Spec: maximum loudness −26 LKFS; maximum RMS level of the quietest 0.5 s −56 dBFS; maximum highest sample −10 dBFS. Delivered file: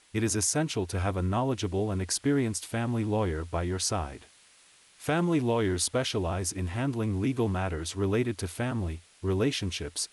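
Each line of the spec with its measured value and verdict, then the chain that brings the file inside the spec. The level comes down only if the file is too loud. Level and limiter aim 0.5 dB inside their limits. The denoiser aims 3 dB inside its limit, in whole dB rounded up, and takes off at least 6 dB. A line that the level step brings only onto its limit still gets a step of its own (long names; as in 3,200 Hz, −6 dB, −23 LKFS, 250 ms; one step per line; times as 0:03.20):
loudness −29.5 LKFS: in spec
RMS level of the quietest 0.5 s −59 dBFS: in spec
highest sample −16.5 dBFS: in spec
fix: no processing needed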